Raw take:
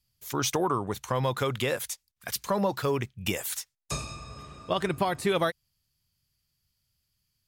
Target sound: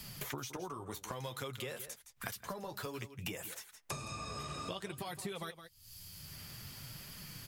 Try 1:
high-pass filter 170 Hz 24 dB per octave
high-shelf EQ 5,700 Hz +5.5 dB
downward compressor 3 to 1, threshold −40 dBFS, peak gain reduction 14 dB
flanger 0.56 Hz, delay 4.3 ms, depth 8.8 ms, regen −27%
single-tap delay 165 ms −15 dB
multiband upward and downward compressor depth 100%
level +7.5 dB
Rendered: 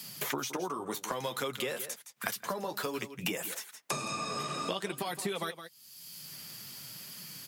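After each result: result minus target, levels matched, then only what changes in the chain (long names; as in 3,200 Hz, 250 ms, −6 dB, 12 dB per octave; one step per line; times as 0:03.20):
125 Hz band −7.5 dB; downward compressor: peak gain reduction −7 dB
remove: high-pass filter 170 Hz 24 dB per octave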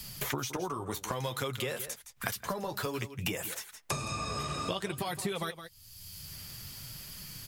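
downward compressor: peak gain reduction −7.5 dB
change: downward compressor 3 to 1, threshold −51 dBFS, peak gain reduction 21 dB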